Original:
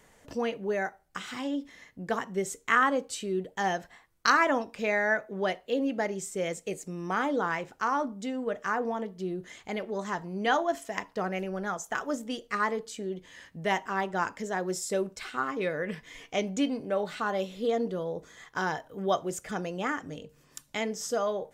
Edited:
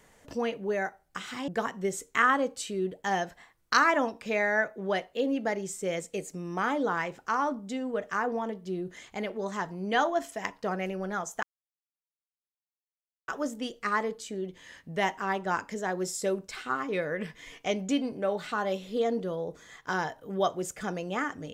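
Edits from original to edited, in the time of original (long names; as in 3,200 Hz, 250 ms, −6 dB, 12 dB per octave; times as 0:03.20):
0:01.48–0:02.01: remove
0:11.96: splice in silence 1.85 s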